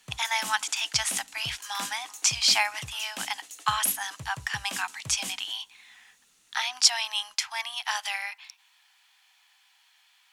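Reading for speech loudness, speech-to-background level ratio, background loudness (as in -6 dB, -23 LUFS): -27.5 LUFS, 12.0 dB, -39.5 LUFS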